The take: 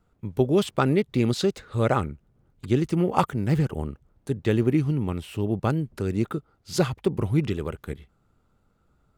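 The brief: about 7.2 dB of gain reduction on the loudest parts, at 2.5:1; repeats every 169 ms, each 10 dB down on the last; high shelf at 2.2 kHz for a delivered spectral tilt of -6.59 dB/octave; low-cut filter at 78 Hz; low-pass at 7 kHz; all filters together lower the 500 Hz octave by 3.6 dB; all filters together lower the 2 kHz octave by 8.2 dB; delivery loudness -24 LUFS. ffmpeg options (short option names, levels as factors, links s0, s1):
-af "highpass=78,lowpass=7000,equalizer=f=500:t=o:g=-4.5,equalizer=f=2000:t=o:g=-7,highshelf=f=2200:g=-8,acompressor=threshold=0.0355:ratio=2.5,aecho=1:1:169|338|507|676:0.316|0.101|0.0324|0.0104,volume=2.82"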